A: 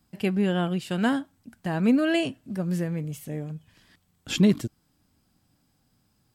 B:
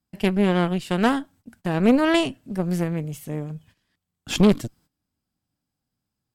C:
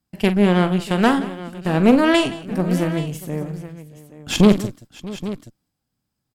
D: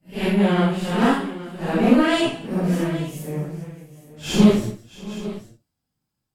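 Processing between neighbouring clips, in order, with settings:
noise gate −53 dBFS, range −16 dB; harmonic generator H 4 −11 dB, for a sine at −9.5 dBFS; level +2 dB
multi-tap delay 44/175/636/825 ms −11.5/−17.5/−19/−15 dB; level +3.5 dB
random phases in long frames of 200 ms; level −2 dB

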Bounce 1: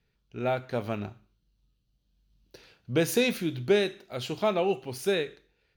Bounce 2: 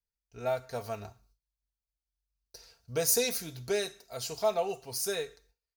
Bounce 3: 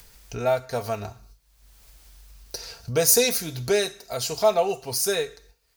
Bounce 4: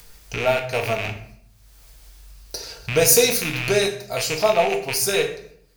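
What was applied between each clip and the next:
comb filter 4.4 ms, depth 62%; noise gate with hold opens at −53 dBFS; drawn EQ curve 120 Hz 0 dB, 200 Hz −18 dB, 680 Hz −3 dB, 3,300 Hz −11 dB, 5,000 Hz +7 dB
upward compression, threshold −34 dBFS; level +8.5 dB
loose part that buzzes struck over −37 dBFS, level −17 dBFS; rectangular room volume 120 cubic metres, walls mixed, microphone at 0.51 metres; level +2 dB

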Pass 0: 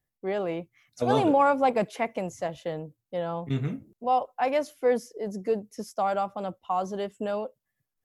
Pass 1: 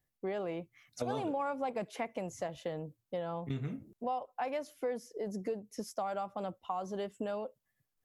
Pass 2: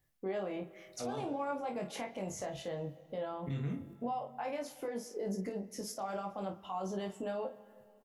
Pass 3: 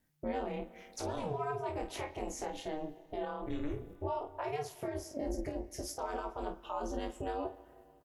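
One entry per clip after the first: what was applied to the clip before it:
downward compressor 4 to 1, threshold −35 dBFS, peak gain reduction 15 dB
brickwall limiter −35 dBFS, peak gain reduction 11 dB; ambience of single reflections 21 ms −4 dB, 50 ms −9 dB; convolution reverb RT60 2.3 s, pre-delay 30 ms, DRR 16.5 dB; level +3 dB
ring modulation 150 Hz; level +3.5 dB

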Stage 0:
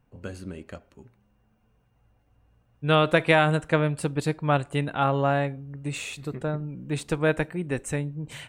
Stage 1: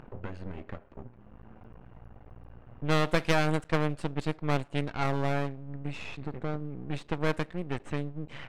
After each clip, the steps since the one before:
half-wave rectification
low-pass that shuts in the quiet parts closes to 1,600 Hz, open at −20 dBFS
upward compression, threshold −27 dBFS
level −2 dB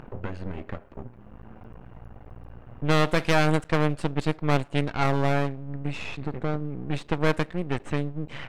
boost into a limiter +12.5 dB
level −7 dB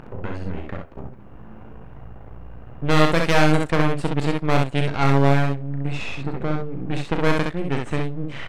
ambience of single reflections 36 ms −9 dB, 65 ms −3.5 dB
level +2.5 dB

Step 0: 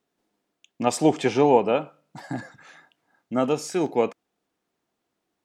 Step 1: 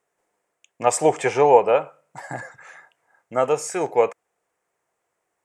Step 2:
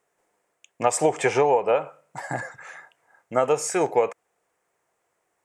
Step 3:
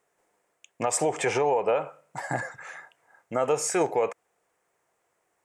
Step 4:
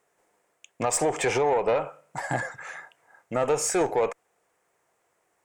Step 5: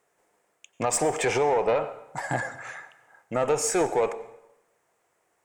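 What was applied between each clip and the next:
graphic EQ with 10 bands 125 Hz +3 dB, 250 Hz −11 dB, 500 Hz +9 dB, 1,000 Hz +6 dB, 2,000 Hz +9 dB, 4,000 Hz −8 dB, 8,000 Hz +12 dB; level −3 dB
downward compressor 12 to 1, threshold −18 dBFS, peak gain reduction 11.5 dB; level +2.5 dB
brickwall limiter −15 dBFS, peak gain reduction 8.5 dB
tube saturation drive 19 dB, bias 0.25; level +3 dB
dense smooth reverb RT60 0.91 s, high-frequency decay 0.8×, pre-delay 80 ms, DRR 14.5 dB

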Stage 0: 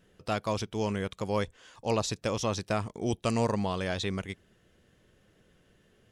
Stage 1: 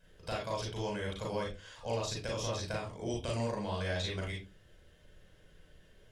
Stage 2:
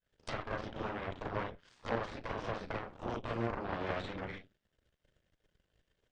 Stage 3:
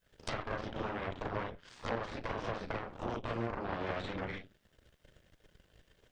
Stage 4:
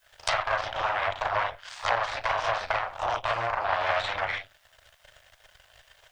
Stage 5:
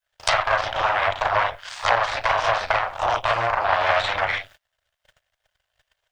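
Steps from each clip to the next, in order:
parametric band 180 Hz −7 dB 2.3 octaves; downward compressor 4 to 1, threshold −36 dBFS, peak gain reduction 9 dB; convolution reverb RT60 0.25 s, pre-delay 34 ms, DRR −2.5 dB; level −4.5 dB
harmonic generator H 3 −10 dB, 6 −15 dB, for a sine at −22.5 dBFS; treble cut that deepens with the level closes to 1,900 Hz, closed at −40 dBFS; elliptic low-pass filter 9,100 Hz; level +4.5 dB
downward compressor 2 to 1, threshold −54 dBFS, peak gain reduction 14 dB; level +11.5 dB
drawn EQ curve 110 Hz 0 dB, 220 Hz −16 dB, 440 Hz −5 dB, 650 Hz +14 dB
noise gate −51 dBFS, range −25 dB; level +6.5 dB

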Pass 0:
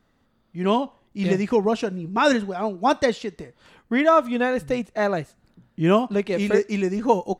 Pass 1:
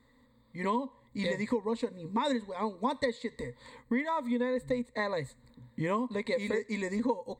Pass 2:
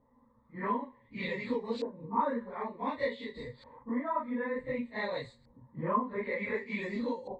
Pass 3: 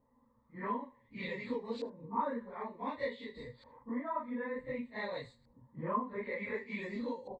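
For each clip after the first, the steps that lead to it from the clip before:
EQ curve with evenly spaced ripples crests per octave 1, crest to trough 18 dB; downward compressor 5 to 1, threshold −26 dBFS, peak gain reduction 18.5 dB; level −3 dB
random phases in long frames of 100 ms; tuned comb filter 79 Hz, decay 0.47 s, harmonics odd, mix 40%; auto-filter low-pass saw up 0.55 Hz 780–4,900 Hz
single-tap delay 77 ms −23.5 dB; level −4.5 dB

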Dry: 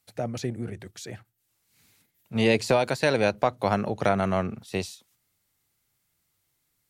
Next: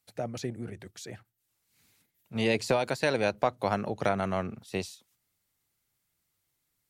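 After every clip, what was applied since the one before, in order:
harmonic and percussive parts rebalanced harmonic −3 dB
level −3 dB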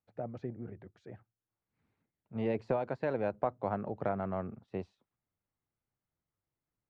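low-pass filter 1,200 Hz 12 dB per octave
level −5 dB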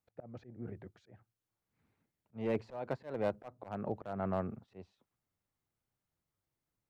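gain into a clipping stage and back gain 25 dB
volume swells 243 ms
level +1.5 dB

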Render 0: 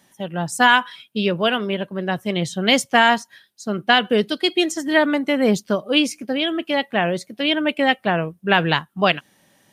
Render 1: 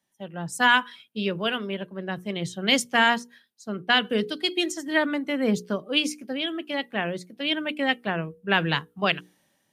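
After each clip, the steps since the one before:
mains-hum notches 60/120/180/240/300/360/420/480 Hz
dynamic equaliser 720 Hz, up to −5 dB, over −29 dBFS, Q 1.5
multiband upward and downward expander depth 40%
level −5 dB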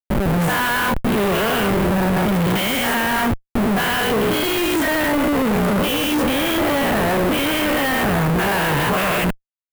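every bin's largest magnitude spread in time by 240 ms
comparator with hysteresis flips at −29.5 dBFS
parametric band 5,700 Hz −11.5 dB 1.7 octaves
level +2.5 dB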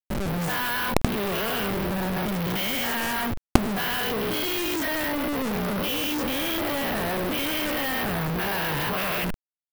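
log-companded quantiser 2 bits
level −2 dB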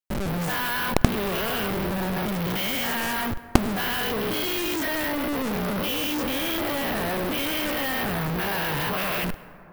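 dense smooth reverb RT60 3.3 s, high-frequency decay 0.3×, pre-delay 85 ms, DRR 16.5 dB

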